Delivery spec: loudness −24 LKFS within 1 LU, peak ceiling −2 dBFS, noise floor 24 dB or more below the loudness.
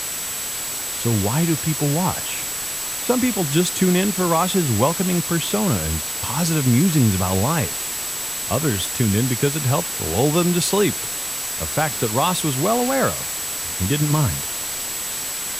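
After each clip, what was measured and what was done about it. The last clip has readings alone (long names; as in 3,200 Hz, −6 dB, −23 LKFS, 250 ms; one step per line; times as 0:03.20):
interfering tone 7,800 Hz; level of the tone −29 dBFS; background noise floor −28 dBFS; target noise floor −45 dBFS; integrated loudness −20.5 LKFS; sample peak −3.5 dBFS; target loudness −24.0 LKFS
→ notch filter 7,800 Hz, Q 30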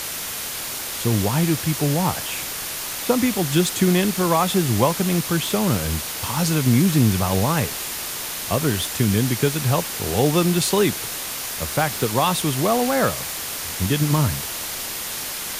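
interfering tone none found; background noise floor −30 dBFS; target noise floor −45 dBFS
→ broadband denoise 15 dB, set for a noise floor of −30 dBFS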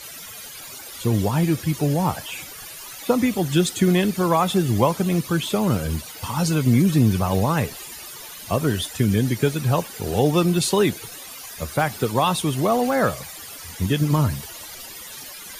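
background noise floor −38 dBFS; target noise floor −46 dBFS
→ broadband denoise 8 dB, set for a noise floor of −38 dBFS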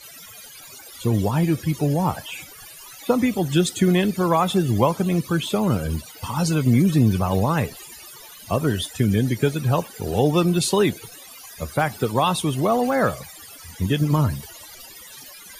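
background noise floor −43 dBFS; target noise floor −46 dBFS
→ broadband denoise 6 dB, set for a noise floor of −43 dBFS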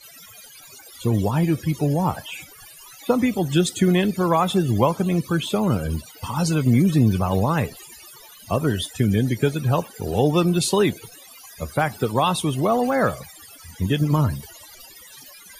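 background noise floor −46 dBFS; integrated loudness −21.5 LKFS; sample peak −4.5 dBFS; target loudness −24.0 LKFS
→ level −2.5 dB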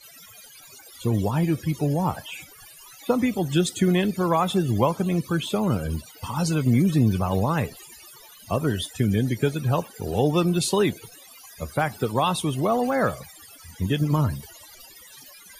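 integrated loudness −24.0 LKFS; sample peak −7.0 dBFS; background noise floor −48 dBFS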